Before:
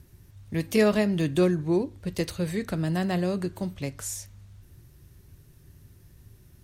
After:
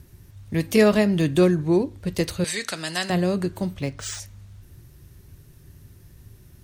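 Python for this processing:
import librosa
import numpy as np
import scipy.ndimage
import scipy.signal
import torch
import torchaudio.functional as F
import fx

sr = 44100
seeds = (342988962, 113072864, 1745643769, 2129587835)

y = fx.weighting(x, sr, curve='ITU-R 468', at=(2.44, 3.1))
y = fx.resample_linear(y, sr, factor=3, at=(3.79, 4.2))
y = y * librosa.db_to_amplitude(4.5)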